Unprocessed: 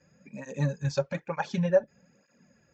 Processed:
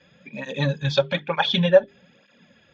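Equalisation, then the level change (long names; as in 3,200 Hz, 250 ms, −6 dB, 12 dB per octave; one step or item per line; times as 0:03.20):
low-pass with resonance 3,400 Hz, resonance Q 14
low-shelf EQ 230 Hz −3.5 dB
mains-hum notches 50/100/150/200/250/300/350/400 Hz
+8.0 dB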